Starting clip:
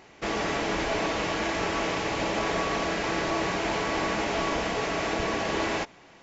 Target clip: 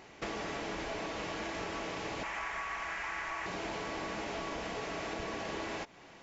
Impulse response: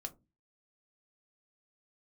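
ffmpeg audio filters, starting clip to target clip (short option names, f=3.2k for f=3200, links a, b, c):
-filter_complex "[0:a]asettb=1/sr,asplit=3[a][b][c];[a]atrim=end=2.234[d];[b]atrim=start=2.23:end=3.46,asetpts=PTS-STARTPTS,afade=t=in:d=0.004:c=qsin,afade=t=out:st=1.226:d=0.004:c=qsin,equalizer=f=125:t=o:w=1:g=-11,equalizer=f=250:t=o:w=1:g=-12,equalizer=f=500:t=o:w=1:g=-11,equalizer=f=1k:t=o:w=1:g=5,equalizer=f=2k:t=o:w=1:g=8,equalizer=f=4k:t=o:w=1:g=-8[e];[c]atrim=start=3.456[f];[d][e]acrossfade=d=0.004:c1=hsin:c2=qsin[g];[g][f]acrossfade=d=0.004:c1=qsin:c2=hsin,acompressor=threshold=-35dB:ratio=5,volume=-1.5dB"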